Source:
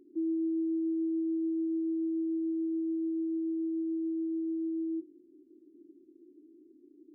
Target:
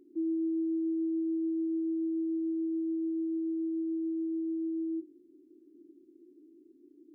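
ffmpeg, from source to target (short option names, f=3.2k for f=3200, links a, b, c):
-af "bandreject=f=77.23:t=h:w=4,bandreject=f=154.46:t=h:w=4,bandreject=f=231.69:t=h:w=4,bandreject=f=308.92:t=h:w=4,bandreject=f=386.15:t=h:w=4,bandreject=f=463.38:t=h:w=4,bandreject=f=540.61:t=h:w=4,bandreject=f=617.84:t=h:w=4,bandreject=f=695.07:t=h:w=4,bandreject=f=772.3:t=h:w=4,bandreject=f=849.53:t=h:w=4"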